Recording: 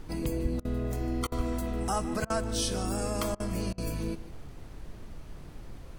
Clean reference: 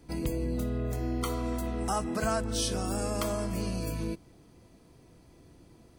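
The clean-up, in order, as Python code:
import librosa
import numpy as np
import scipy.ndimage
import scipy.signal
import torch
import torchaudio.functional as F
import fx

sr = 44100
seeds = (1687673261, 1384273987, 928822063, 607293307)

y = fx.fix_deplosive(x, sr, at_s=(0.42, 1.36))
y = fx.fix_interpolate(y, sr, at_s=(0.6, 1.27, 2.25, 3.35, 3.73), length_ms=48.0)
y = fx.noise_reduce(y, sr, print_start_s=5.44, print_end_s=5.94, reduce_db=13.0)
y = fx.fix_echo_inverse(y, sr, delay_ms=149, level_db=-17.5)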